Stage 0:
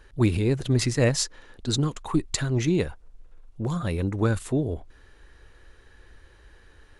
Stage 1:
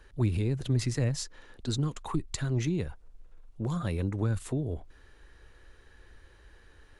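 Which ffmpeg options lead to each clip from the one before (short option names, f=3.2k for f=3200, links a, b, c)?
-filter_complex "[0:a]acrossover=split=190[a][b];[b]acompressor=threshold=-29dB:ratio=10[c];[a][c]amix=inputs=2:normalize=0,volume=-3dB"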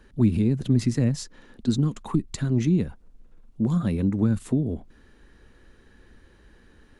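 -af "equalizer=f=220:w=1.4:g=14.5"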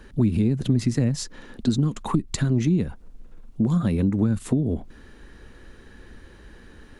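-af "acompressor=threshold=-28dB:ratio=2.5,volume=7.5dB"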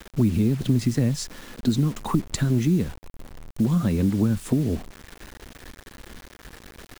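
-af "acrusher=bits=6:mix=0:aa=0.000001"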